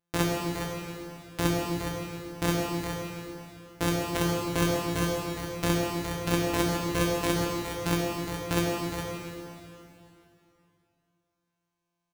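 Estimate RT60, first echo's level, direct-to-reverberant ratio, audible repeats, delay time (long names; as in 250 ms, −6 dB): 2.8 s, −9.0 dB, −3.0 dB, 1, 414 ms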